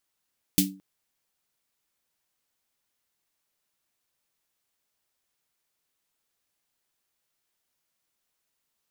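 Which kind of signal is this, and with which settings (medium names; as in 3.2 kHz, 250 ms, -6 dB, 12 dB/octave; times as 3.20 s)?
snare drum length 0.22 s, tones 190 Hz, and 290 Hz, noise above 2.6 kHz, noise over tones 2 dB, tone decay 0.38 s, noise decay 0.18 s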